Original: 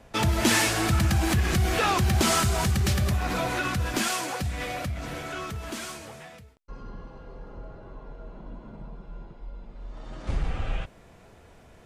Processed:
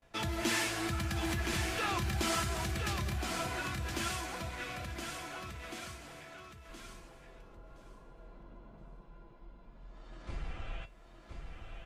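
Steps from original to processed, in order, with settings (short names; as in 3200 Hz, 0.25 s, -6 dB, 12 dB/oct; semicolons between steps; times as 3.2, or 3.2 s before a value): bell 2300 Hz +4 dB 2.5 oct; resonator 340 Hz, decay 0.18 s, harmonics all, mix 70%; on a send: feedback echo 1.019 s, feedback 16%, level -6 dB; on the sum: gate with hold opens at -50 dBFS; gain -4.5 dB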